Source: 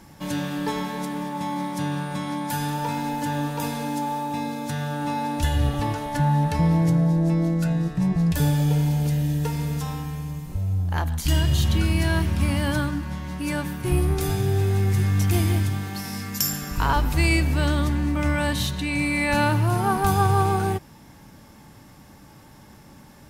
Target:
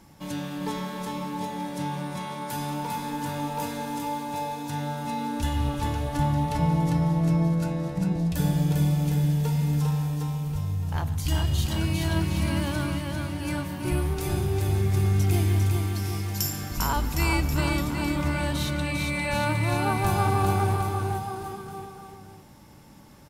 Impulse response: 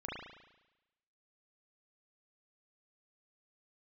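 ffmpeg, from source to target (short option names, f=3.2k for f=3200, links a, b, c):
-filter_complex "[0:a]equalizer=f=1.7k:w=6.3:g=-4.5,asplit=2[a][b];[b]aecho=0:1:400|760|1084|1376|1638:0.631|0.398|0.251|0.158|0.1[c];[a][c]amix=inputs=2:normalize=0,volume=-5dB"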